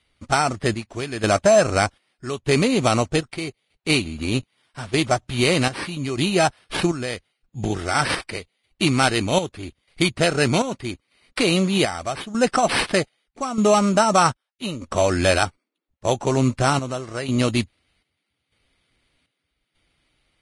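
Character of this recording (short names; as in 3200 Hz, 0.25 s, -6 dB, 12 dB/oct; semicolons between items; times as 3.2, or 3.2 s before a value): chopped level 0.81 Hz, depth 65%, duty 60%; aliases and images of a low sample rate 6800 Hz, jitter 0%; Vorbis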